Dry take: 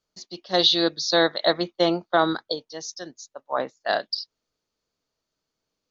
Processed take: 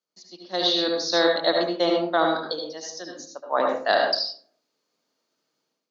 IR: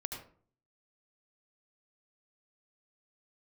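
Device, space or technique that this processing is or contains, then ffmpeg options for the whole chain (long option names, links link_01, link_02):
far laptop microphone: -filter_complex "[1:a]atrim=start_sample=2205[link_01];[0:a][link_01]afir=irnorm=-1:irlink=0,highpass=frequency=190:width=0.5412,highpass=frequency=190:width=1.3066,dynaudnorm=framelen=510:gausssize=3:maxgain=12dB,volume=-5dB"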